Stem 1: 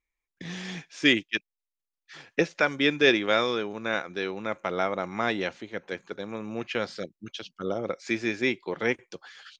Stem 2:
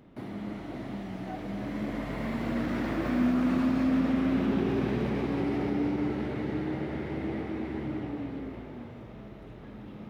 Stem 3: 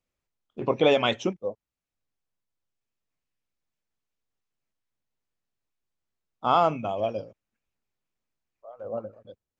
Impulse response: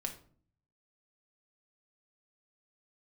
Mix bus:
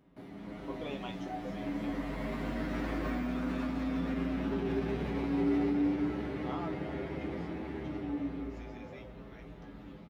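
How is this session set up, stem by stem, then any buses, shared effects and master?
-18.0 dB, 0.50 s, no bus, no send, limiter -17 dBFS, peak gain reduction 10.5 dB
-1.5 dB, 0.00 s, bus A, no send, dry
-18.0 dB, 0.00 s, bus A, no send, dry
bus A: 0.0 dB, AGC gain up to 5.5 dB; limiter -18 dBFS, peak gain reduction 5 dB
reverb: off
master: resonator 57 Hz, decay 0.18 s, harmonics odd, mix 90%

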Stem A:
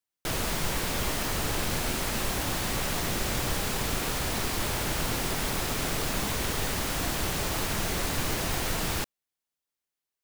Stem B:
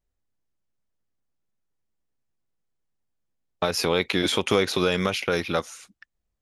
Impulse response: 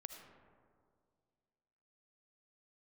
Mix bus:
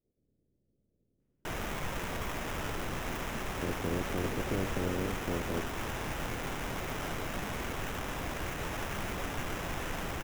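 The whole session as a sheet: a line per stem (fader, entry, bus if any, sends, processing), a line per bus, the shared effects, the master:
-7.0 dB, 1.20 s, no send, sample-and-hold 10×
+0.5 dB, 0.00 s, no send, spectral limiter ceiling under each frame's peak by 27 dB; inverse Chebyshev low-pass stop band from 1000 Hz, stop band 40 dB; limiter -24 dBFS, peak gain reduction 6 dB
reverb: off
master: clock jitter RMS 0.021 ms

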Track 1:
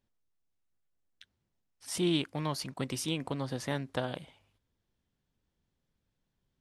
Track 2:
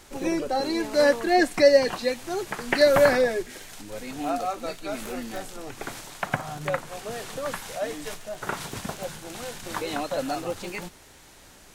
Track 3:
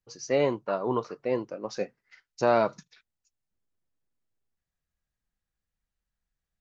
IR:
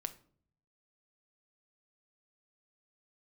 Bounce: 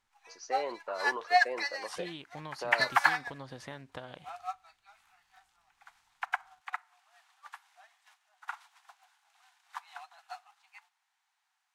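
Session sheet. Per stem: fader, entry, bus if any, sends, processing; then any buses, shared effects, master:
+1.0 dB, 0.00 s, no send, bell 240 Hz -6 dB 2.9 oct; compressor 5:1, threshold -39 dBFS, peak gain reduction 10.5 dB
+2.0 dB, 0.00 s, send -8 dB, steep high-pass 730 Hz 96 dB/oct; upward expander 2.5:1, over -40 dBFS
-0.5 dB, 0.20 s, no send, HPF 540 Hz 12 dB/oct; limiter -25 dBFS, peak gain reduction 10.5 dB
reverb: on, RT60 0.55 s, pre-delay 6 ms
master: LPF 2700 Hz 6 dB/oct; low shelf 390 Hz -4 dB

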